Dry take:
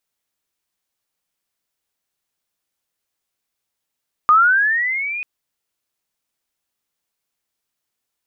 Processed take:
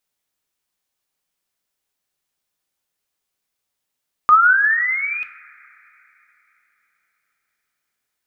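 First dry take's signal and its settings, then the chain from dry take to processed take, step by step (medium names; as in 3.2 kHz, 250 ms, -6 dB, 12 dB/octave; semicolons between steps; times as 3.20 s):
sweep linear 1.2 kHz -> 2.5 kHz -7.5 dBFS -> -23.5 dBFS 0.94 s
two-slope reverb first 0.47 s, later 3.8 s, from -21 dB, DRR 9 dB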